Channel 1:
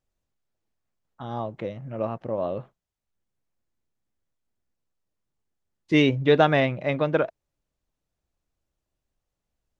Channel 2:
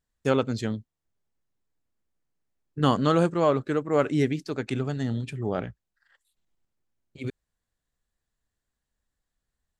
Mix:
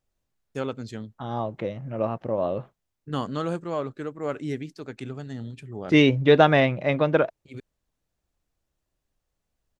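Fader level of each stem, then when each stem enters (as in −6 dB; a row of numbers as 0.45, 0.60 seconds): +2.0, −7.0 decibels; 0.00, 0.30 seconds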